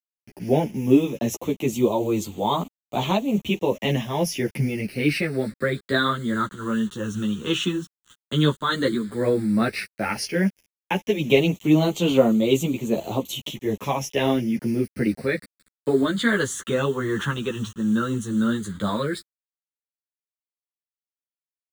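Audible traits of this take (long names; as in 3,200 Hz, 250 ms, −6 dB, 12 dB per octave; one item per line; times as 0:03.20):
a quantiser's noise floor 8 bits, dither none
phaser sweep stages 8, 0.1 Hz, lowest notch 660–1,600 Hz
tremolo triangle 2.4 Hz, depth 35%
a shimmering, thickened sound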